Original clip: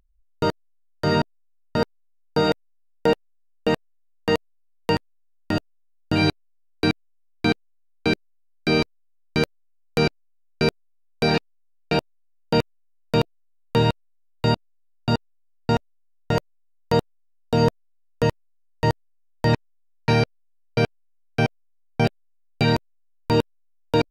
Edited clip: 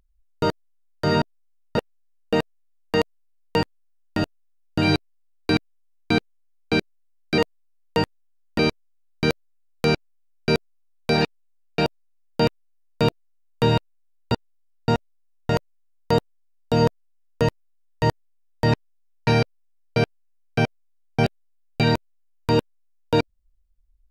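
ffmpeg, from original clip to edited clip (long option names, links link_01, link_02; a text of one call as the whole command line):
ffmpeg -i in.wav -filter_complex "[0:a]asplit=5[link_01][link_02][link_03][link_04][link_05];[link_01]atrim=end=1.782[link_06];[link_02]atrim=start=3.118:end=8.722[link_07];[link_03]atrim=start=4.308:end=5.522[link_08];[link_04]atrim=start=8.718:end=14.452[link_09];[link_05]atrim=start=15.128[link_10];[link_06][link_07]acrossfade=duration=0.004:curve1=hsin:curve2=hsin[link_11];[link_11][link_08]acrossfade=duration=0.004:curve1=hsin:curve2=hsin[link_12];[link_12][link_09]acrossfade=duration=0.004:curve1=hsin:curve2=hsin[link_13];[link_13][link_10]acrossfade=duration=0.004:curve1=hsin:curve2=hsin" out.wav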